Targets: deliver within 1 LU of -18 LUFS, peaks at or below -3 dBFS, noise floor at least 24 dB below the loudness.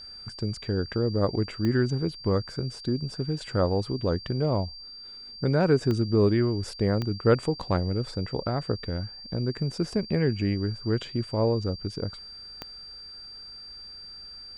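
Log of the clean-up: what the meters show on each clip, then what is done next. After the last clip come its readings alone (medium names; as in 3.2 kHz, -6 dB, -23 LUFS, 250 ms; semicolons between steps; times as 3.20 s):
clicks found 4; steady tone 4.7 kHz; tone level -41 dBFS; loudness -27.5 LUFS; peak level -8.5 dBFS; loudness target -18.0 LUFS
-> de-click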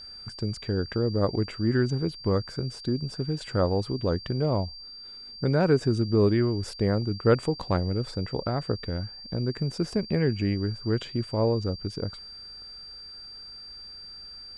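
clicks found 0; steady tone 4.7 kHz; tone level -41 dBFS
-> band-stop 4.7 kHz, Q 30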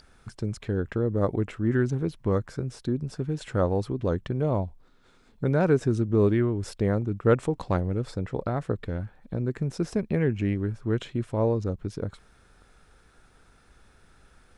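steady tone not found; loudness -27.5 LUFS; peak level -9.0 dBFS; loudness target -18.0 LUFS
-> trim +9.5 dB; peak limiter -3 dBFS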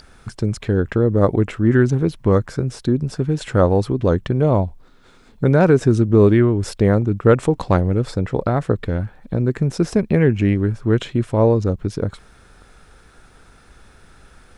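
loudness -18.5 LUFS; peak level -3.0 dBFS; noise floor -49 dBFS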